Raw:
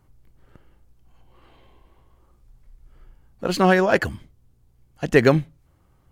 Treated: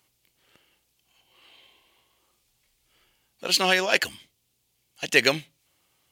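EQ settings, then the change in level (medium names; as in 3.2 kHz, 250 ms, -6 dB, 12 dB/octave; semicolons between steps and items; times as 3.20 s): high-pass 760 Hz 6 dB/octave; resonant high shelf 2 kHz +10 dB, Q 1.5; -2.0 dB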